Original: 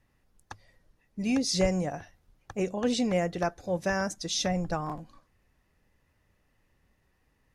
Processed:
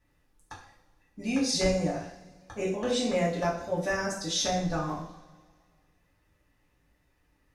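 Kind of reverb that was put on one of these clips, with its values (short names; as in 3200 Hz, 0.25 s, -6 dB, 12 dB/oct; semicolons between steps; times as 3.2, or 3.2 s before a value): two-slope reverb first 0.54 s, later 2 s, from -20 dB, DRR -5 dB; gain -5 dB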